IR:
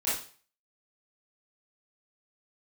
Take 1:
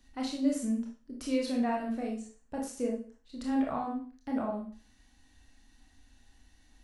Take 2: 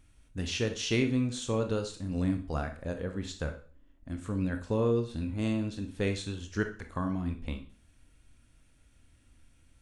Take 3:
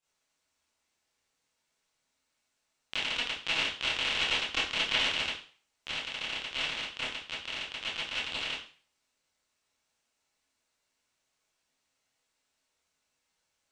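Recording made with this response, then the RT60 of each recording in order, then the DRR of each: 3; 0.40, 0.40, 0.40 seconds; −1.5, 5.5, −11.5 decibels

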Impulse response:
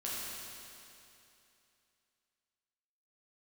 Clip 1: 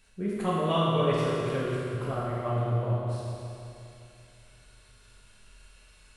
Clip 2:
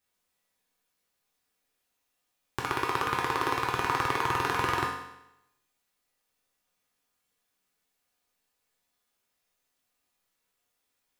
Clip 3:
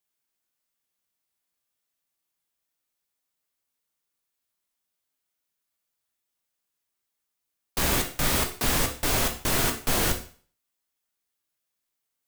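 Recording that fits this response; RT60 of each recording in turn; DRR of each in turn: 1; 2.8, 0.85, 0.45 seconds; −7.5, −3.5, 3.5 decibels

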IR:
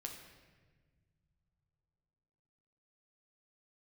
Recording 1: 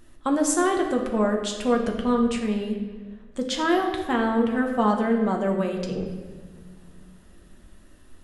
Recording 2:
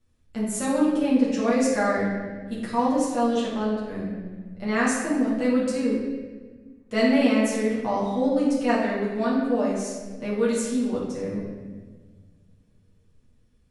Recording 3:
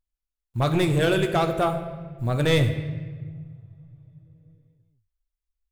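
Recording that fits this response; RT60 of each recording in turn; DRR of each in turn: 1; non-exponential decay, 1.4 s, non-exponential decay; 1.5, −8.0, 6.0 decibels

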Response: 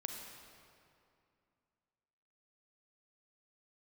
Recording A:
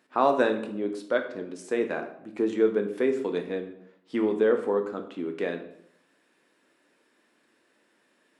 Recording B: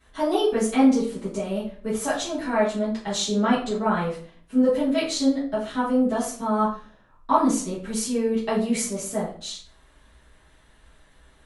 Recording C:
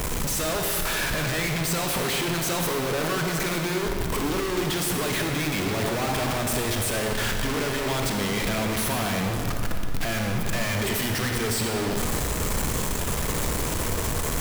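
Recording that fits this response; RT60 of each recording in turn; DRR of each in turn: C; 0.75, 0.45, 2.5 seconds; 4.5, −11.0, 2.5 decibels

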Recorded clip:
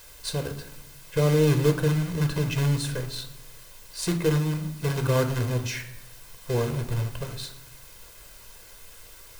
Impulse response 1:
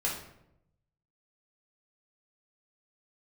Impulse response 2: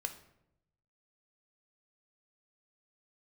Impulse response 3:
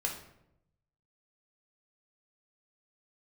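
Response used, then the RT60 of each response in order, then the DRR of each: 2; 0.80, 0.80, 0.80 seconds; −4.0, 6.5, 0.0 decibels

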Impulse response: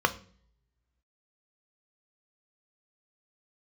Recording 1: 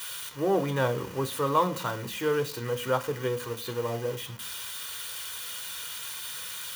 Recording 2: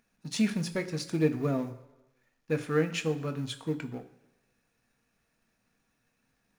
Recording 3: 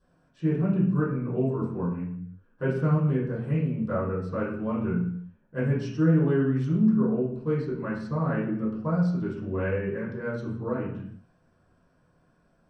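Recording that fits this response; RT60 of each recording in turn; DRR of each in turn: 1; 0.50 s, 1.0 s, non-exponential decay; 8.0, 7.0, −13.0 decibels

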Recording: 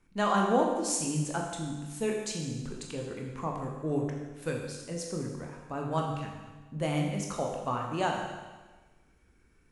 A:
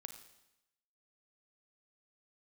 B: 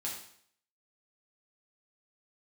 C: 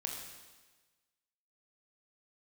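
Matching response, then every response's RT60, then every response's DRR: C; 0.90, 0.60, 1.3 seconds; 7.5, −5.0, 0.0 decibels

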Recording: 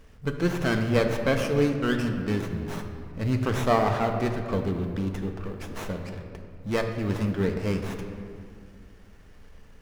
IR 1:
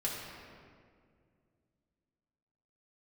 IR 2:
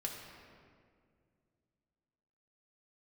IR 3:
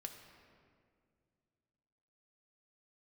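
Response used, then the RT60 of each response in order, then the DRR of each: 3; 2.1, 2.1, 2.2 seconds; −4.5, −0.5, 4.0 decibels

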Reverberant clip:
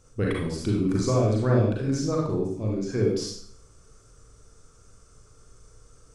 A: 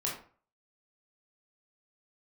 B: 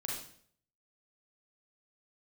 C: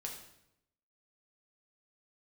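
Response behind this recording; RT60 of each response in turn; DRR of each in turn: B; 0.45, 0.60, 0.80 seconds; −4.0, −3.0, −0.5 decibels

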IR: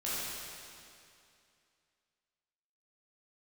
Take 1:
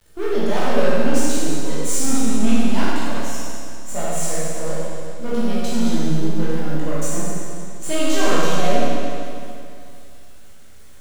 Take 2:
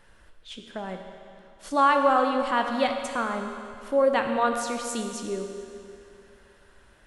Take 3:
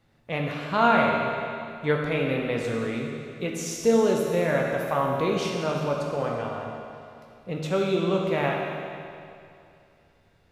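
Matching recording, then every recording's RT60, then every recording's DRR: 1; 2.5, 2.5, 2.5 seconds; −10.0, 4.0, −0.5 decibels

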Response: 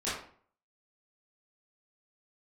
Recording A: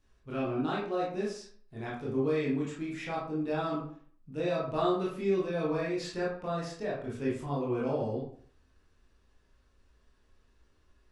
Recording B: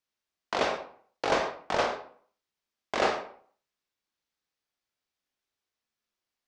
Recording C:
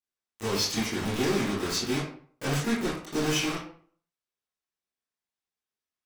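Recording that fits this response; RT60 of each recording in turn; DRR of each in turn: C; 0.50, 0.50, 0.50 seconds; −6.0, 2.0, −12.0 decibels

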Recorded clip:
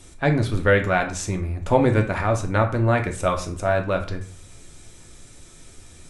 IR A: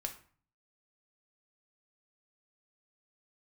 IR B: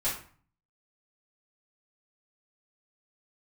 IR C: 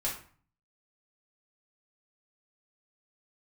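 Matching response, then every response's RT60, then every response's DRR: A; 0.45, 0.45, 0.45 seconds; 3.5, −11.0, −6.0 decibels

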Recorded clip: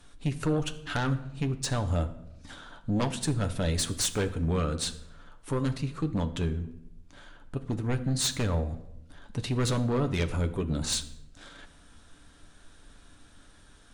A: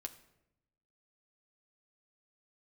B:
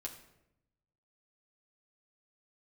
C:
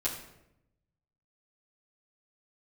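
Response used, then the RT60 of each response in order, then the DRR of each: A; 0.85, 0.85, 0.85 seconds; 7.0, 0.0, −8.0 decibels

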